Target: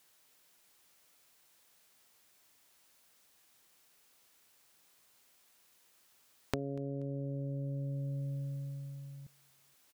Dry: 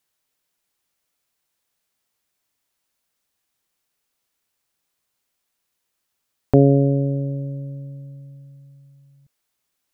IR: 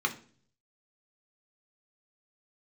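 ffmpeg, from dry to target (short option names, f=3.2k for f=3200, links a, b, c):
-filter_complex "[0:a]lowshelf=f=140:g=-6.5,acompressor=threshold=-43dB:ratio=20,asplit=2[a][b];[b]aecho=0:1:240|480:0.0631|0.0246[c];[a][c]amix=inputs=2:normalize=0,volume=9dB"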